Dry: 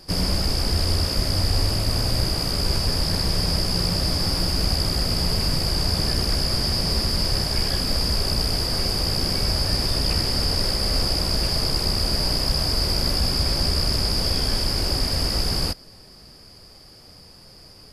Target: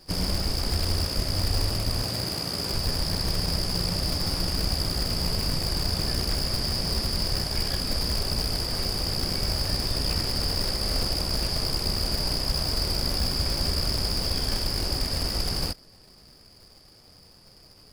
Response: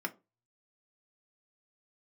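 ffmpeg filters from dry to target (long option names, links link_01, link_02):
-filter_complex "[0:a]asplit=2[link_01][link_02];[link_02]acrusher=bits=4:dc=4:mix=0:aa=0.000001,volume=-8.5dB[link_03];[link_01][link_03]amix=inputs=2:normalize=0,asettb=1/sr,asplit=3[link_04][link_05][link_06];[link_04]atrim=end=2.034[link_07];[link_05]atrim=start=2.03:end=2.72,asetpts=PTS-STARTPTS,afade=type=in:duration=0.004:curve=qsin,afade=type=out:start_time=0.686:duration=0.004:curve=qsin,highpass=110[link_08];[link_06]atrim=start=2.716[link_09];[link_07][link_08]acrossfade=duration=0.004:curve1=hsin:curve2=qsin[link_10];[link_10][link_09]acrossfade=duration=0.004:curve1=qsin:curve2=hsin,volume=-7dB"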